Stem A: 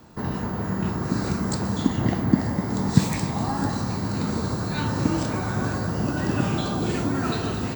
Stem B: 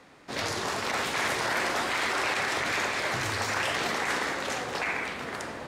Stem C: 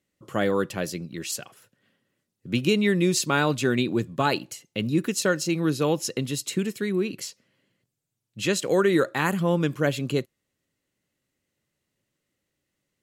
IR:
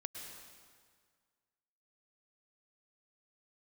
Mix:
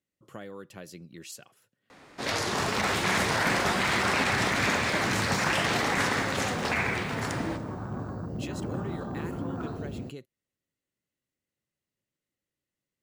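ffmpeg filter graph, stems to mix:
-filter_complex "[0:a]afwtdn=0.0398,asoftclip=type=hard:threshold=-17.5dB,adelay=2350,volume=-10.5dB,asplit=2[a][b];[b]volume=-10dB[c];[1:a]adelay=1900,volume=0dB,asplit=2[d][e];[e]volume=-9dB[f];[2:a]acompressor=threshold=-28dB:ratio=6,volume=-10.5dB[g];[3:a]atrim=start_sample=2205[h];[c][f]amix=inputs=2:normalize=0[i];[i][h]afir=irnorm=-1:irlink=0[j];[a][d][g][j]amix=inputs=4:normalize=0"

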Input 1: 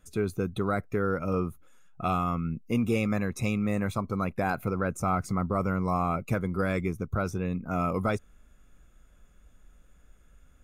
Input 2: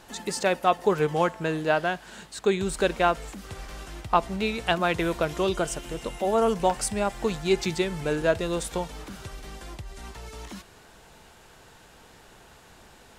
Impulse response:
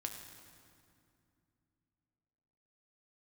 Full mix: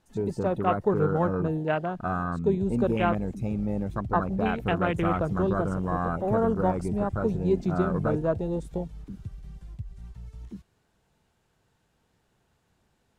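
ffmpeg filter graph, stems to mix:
-filter_complex "[0:a]volume=-1dB[a];[1:a]equalizer=f=120:w=0.5:g=9.5,volume=-5dB[b];[a][b]amix=inputs=2:normalize=0,afwtdn=0.0316"

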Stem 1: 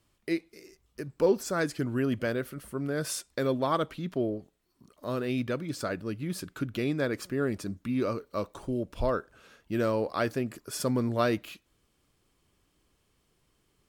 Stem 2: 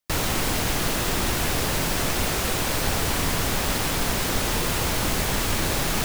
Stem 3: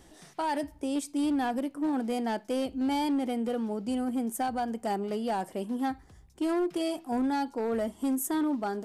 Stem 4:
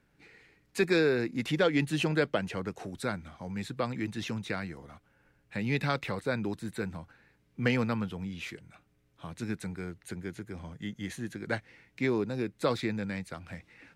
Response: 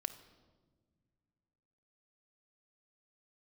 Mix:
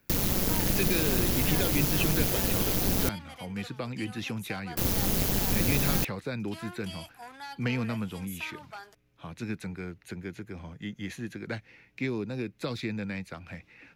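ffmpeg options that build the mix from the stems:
-filter_complex "[1:a]acrossover=split=500[a][b];[b]acompressor=threshold=-40dB:ratio=3[c];[a][c]amix=inputs=2:normalize=0,crystalizer=i=3:c=0,tremolo=f=190:d=0.919,volume=2dB,asplit=3[d][e][f];[d]atrim=end=3.09,asetpts=PTS-STARTPTS,afade=t=out:st=3.086:d=0.004:c=hsin[g];[e]atrim=start=3.09:end=4.77,asetpts=PTS-STARTPTS,volume=0[h];[f]atrim=start=4.77,asetpts=PTS-STARTPTS,afade=t=in:d=0.004:c=hsin[i];[g][h][i]concat=n=3:v=0:a=1[j];[2:a]highpass=1.5k,alimiter=level_in=10dB:limit=-24dB:level=0:latency=1:release=29,volume=-10dB,adelay=100,volume=1dB[k];[3:a]equalizer=f=2.5k:w=6.1:g=6,acrossover=split=270|3000[l][m][n];[m]acompressor=threshold=-35dB:ratio=6[o];[l][o][n]amix=inputs=3:normalize=0,volume=0.5dB[p];[j][k][p]amix=inputs=3:normalize=0,equalizer=f=8.5k:w=3.4:g=-9"

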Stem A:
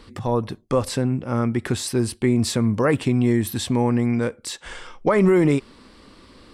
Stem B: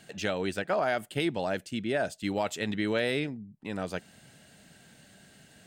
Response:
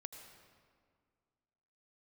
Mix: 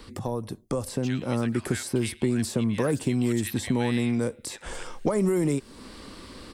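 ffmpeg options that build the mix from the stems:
-filter_complex "[0:a]highshelf=f=6.7k:g=7,acrossover=split=170|950|5700[a][b][c][d];[a]acompressor=threshold=-38dB:ratio=4[e];[b]acompressor=threshold=-30dB:ratio=4[f];[c]acompressor=threshold=-51dB:ratio=4[g];[d]acompressor=threshold=-44dB:ratio=4[h];[e][f][g][h]amix=inputs=4:normalize=0,volume=0.5dB[i];[1:a]highpass=f=1.5k:w=0.5412,highpass=f=1.5k:w=1.3066,adelay=850,volume=-7dB,asplit=2[j][k];[k]volume=-19dB,aecho=0:1:109|218|327|436|545|654|763:1|0.47|0.221|0.104|0.0488|0.0229|0.0108[l];[i][j][l]amix=inputs=3:normalize=0,dynaudnorm=f=400:g=5:m=4dB"

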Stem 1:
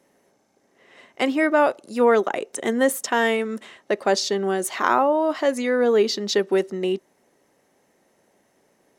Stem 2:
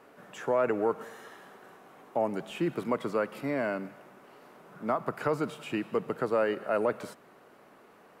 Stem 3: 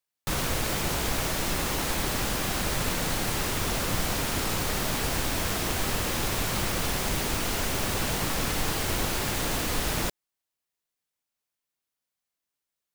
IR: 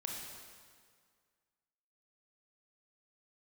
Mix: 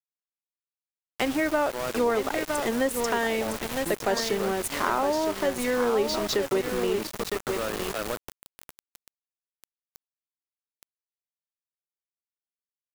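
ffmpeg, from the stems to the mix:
-filter_complex "[0:a]volume=2dB,asplit=2[a][b];[b]volume=-7.5dB[c];[1:a]adelay=1250,volume=0dB,asplit=2[d][e];[e]volume=-14dB[f];[2:a]adelay=950,volume=-8.5dB[g];[c][f]amix=inputs=2:normalize=0,aecho=0:1:960|1920|2880:1|0.19|0.0361[h];[a][d][g][h]amix=inputs=4:normalize=0,aeval=exprs='val(0)*gte(abs(val(0)),0.0631)':c=same,acompressor=threshold=-28dB:ratio=2"

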